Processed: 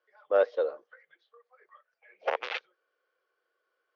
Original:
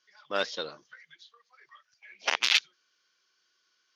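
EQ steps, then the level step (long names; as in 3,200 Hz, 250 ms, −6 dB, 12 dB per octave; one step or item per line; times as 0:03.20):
high-pass with resonance 500 Hz, resonance Q 4.1
low-pass filter 1,300 Hz 12 dB per octave
notch filter 980 Hz, Q 12
0.0 dB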